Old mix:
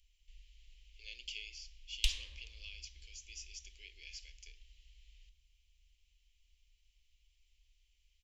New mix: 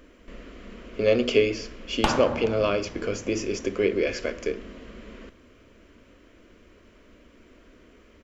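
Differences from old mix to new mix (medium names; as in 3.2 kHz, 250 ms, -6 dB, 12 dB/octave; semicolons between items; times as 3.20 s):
speech +11.0 dB; master: remove inverse Chebyshev band-stop 100–1500 Hz, stop band 40 dB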